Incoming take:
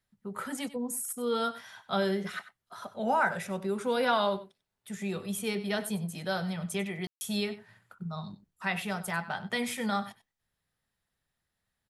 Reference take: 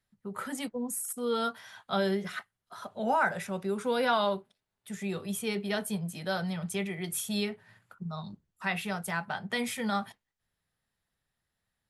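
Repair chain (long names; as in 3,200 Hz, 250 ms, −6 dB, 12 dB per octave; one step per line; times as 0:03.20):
ambience match 0:07.07–0:07.21
echo removal 95 ms −15.5 dB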